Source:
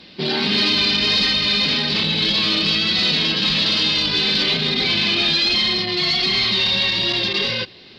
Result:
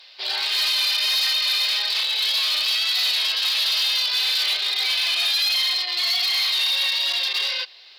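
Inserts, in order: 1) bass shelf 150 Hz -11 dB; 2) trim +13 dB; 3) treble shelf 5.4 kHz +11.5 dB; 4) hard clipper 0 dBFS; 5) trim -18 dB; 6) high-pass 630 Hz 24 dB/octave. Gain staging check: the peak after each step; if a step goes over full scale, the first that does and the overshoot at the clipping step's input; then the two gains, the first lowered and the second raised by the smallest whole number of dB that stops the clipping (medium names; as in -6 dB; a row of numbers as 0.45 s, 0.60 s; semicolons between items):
-8.5 dBFS, +4.5 dBFS, +7.5 dBFS, 0.0 dBFS, -18.0 dBFS, -14.0 dBFS; step 2, 7.5 dB; step 2 +5 dB, step 5 -10 dB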